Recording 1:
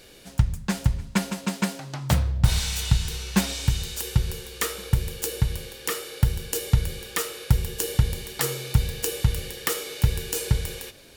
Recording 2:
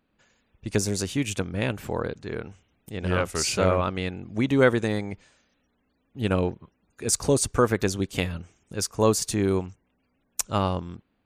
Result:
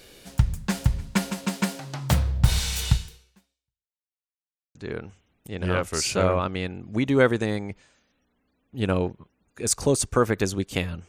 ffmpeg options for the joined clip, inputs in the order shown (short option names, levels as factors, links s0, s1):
-filter_complex "[0:a]apad=whole_dur=11.08,atrim=end=11.08,asplit=2[s0][s1];[s0]atrim=end=4.12,asetpts=PTS-STARTPTS,afade=t=out:st=2.92:d=1.2:c=exp[s2];[s1]atrim=start=4.12:end=4.75,asetpts=PTS-STARTPTS,volume=0[s3];[1:a]atrim=start=2.17:end=8.5,asetpts=PTS-STARTPTS,afade=t=in:d=0.004:c=hsin[s4];[s2][s3][s4]concat=n=3:v=0:a=1"